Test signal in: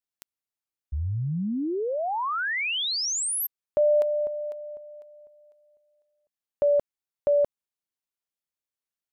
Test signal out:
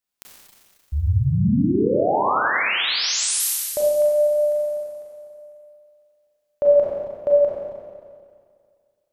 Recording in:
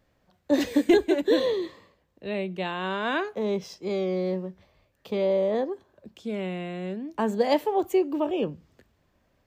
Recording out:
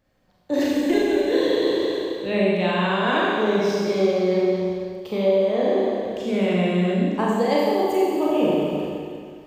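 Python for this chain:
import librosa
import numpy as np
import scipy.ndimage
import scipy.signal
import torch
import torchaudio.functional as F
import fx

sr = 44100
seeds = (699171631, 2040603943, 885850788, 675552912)

y = fx.rev_schroeder(x, sr, rt60_s=2.1, comb_ms=30, drr_db=-5.5)
y = fx.rider(y, sr, range_db=5, speed_s=0.5)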